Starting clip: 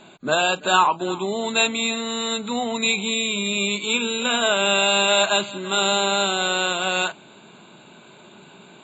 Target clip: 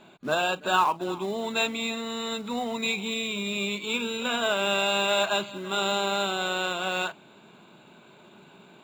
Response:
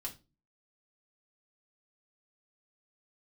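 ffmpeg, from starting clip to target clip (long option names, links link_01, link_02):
-af "acrusher=bits=4:mode=log:mix=0:aa=0.000001,highshelf=frequency=5600:gain=-10,volume=-5dB"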